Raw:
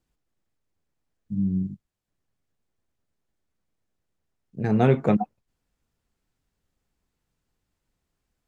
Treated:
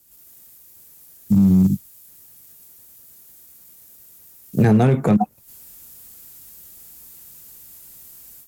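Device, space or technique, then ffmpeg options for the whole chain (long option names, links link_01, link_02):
FM broadcast chain: -filter_complex "[0:a]highpass=frequency=71:poles=1,dynaudnorm=framelen=100:gausssize=3:maxgain=13dB,acrossover=split=200|2000[link_01][link_02][link_03];[link_01]acompressor=threshold=-21dB:ratio=4[link_04];[link_02]acompressor=threshold=-25dB:ratio=4[link_05];[link_03]acompressor=threshold=-56dB:ratio=4[link_06];[link_04][link_05][link_06]amix=inputs=3:normalize=0,aemphasis=mode=production:type=50fm,alimiter=limit=-16dB:level=0:latency=1:release=27,asoftclip=type=hard:threshold=-17dB,lowpass=frequency=15000:width=0.5412,lowpass=frequency=15000:width=1.3066,aemphasis=mode=production:type=50fm,volume=8.5dB"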